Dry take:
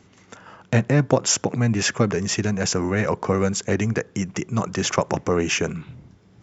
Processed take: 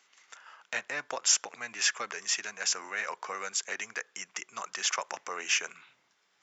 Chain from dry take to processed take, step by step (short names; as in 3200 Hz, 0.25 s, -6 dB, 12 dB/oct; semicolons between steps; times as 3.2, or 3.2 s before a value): HPF 1300 Hz 12 dB/oct; gain -3.5 dB